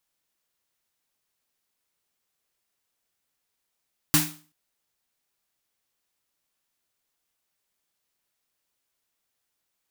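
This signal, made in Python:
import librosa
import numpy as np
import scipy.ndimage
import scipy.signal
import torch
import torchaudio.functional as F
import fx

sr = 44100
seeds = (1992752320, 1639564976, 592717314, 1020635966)

y = fx.drum_snare(sr, seeds[0], length_s=0.38, hz=160.0, second_hz=300.0, noise_db=4, noise_from_hz=690.0, decay_s=0.39, noise_decay_s=0.37)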